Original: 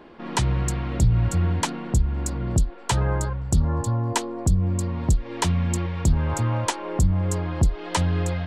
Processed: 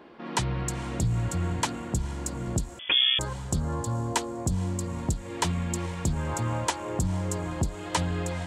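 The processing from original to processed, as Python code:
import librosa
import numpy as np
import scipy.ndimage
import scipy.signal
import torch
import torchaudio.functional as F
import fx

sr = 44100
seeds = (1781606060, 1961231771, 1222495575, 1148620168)

y = fx.echo_diffused(x, sr, ms=477, feedback_pct=42, wet_db=-15.5)
y = fx.freq_invert(y, sr, carrier_hz=3400, at=(2.79, 3.19))
y = fx.highpass(y, sr, hz=140.0, slope=6)
y = y * 10.0 ** (-2.5 / 20.0)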